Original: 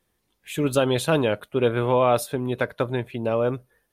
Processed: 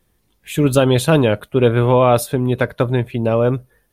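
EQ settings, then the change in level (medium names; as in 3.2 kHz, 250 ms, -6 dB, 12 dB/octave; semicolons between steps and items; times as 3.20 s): bass shelf 200 Hz +9 dB; treble shelf 11 kHz +4 dB; +5.0 dB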